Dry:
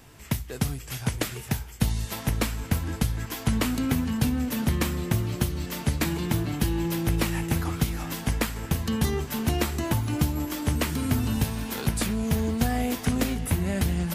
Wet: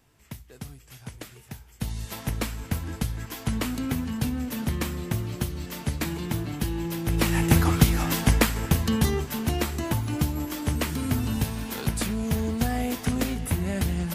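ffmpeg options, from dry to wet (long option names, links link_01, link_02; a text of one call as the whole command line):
ffmpeg -i in.wav -af "volume=7dB,afade=type=in:start_time=1.62:duration=0.48:silence=0.334965,afade=type=in:start_time=7.05:duration=0.47:silence=0.316228,afade=type=out:start_time=8.13:duration=1.27:silence=0.398107" out.wav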